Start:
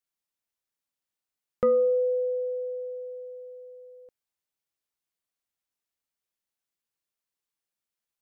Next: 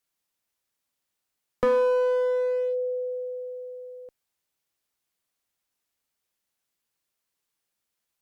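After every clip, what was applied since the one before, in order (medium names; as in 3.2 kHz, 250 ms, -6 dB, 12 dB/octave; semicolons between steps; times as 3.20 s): in parallel at +2 dB: compression 6:1, threshold -31 dBFS, peak gain reduction 11 dB; on the sum: one-sided clip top -24 dBFS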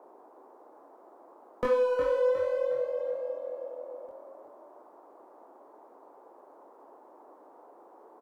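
chorus voices 2, 1.1 Hz, delay 22 ms, depth 3.8 ms; band noise 290–1000 Hz -54 dBFS; frequency-shifting echo 360 ms, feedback 41%, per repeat +41 Hz, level -7.5 dB; trim -1 dB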